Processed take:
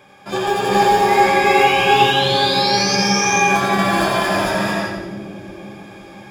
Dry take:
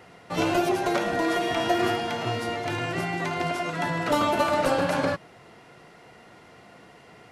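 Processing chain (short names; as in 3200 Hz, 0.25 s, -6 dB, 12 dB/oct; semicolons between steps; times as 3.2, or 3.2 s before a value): ripple EQ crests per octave 1.9, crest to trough 9 dB; varispeed +16%; painted sound rise, 1.08–2.96, 2000–6400 Hz -29 dBFS; split-band echo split 460 Hz, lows 0.517 s, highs 87 ms, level -6 dB; non-linear reverb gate 0.49 s rising, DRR -5 dB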